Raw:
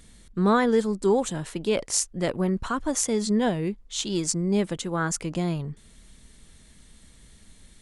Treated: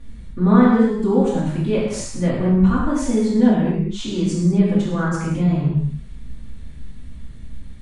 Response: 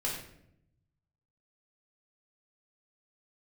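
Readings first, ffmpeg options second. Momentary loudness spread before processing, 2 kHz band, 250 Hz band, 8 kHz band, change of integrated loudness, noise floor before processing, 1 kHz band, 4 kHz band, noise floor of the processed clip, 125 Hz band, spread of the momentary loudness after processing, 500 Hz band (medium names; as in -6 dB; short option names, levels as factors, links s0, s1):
8 LU, +2.5 dB, +10.0 dB, -7.0 dB, +7.0 dB, -54 dBFS, +3.0 dB, -2.0 dB, -35 dBFS, +11.5 dB, 8 LU, +3.5 dB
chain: -filter_complex "[0:a]bass=f=250:g=10,treble=f=4000:g=-12,asplit=2[s0][s1];[s1]acompressor=threshold=0.0501:ratio=6,volume=0.891[s2];[s0][s2]amix=inputs=2:normalize=0[s3];[1:a]atrim=start_sample=2205,atrim=end_sample=6174,asetrate=22050,aresample=44100[s4];[s3][s4]afir=irnorm=-1:irlink=0,volume=0.335"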